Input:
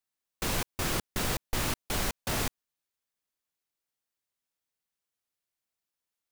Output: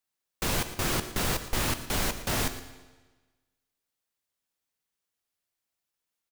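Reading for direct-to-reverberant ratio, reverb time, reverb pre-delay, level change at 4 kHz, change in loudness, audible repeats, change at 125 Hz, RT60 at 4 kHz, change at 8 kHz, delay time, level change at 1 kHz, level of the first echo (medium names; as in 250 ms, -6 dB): 9.5 dB, 1.3 s, 11 ms, +2.5 dB, +2.5 dB, 1, +2.5 dB, 1.2 s, +2.5 dB, 115 ms, +2.5 dB, -15.5 dB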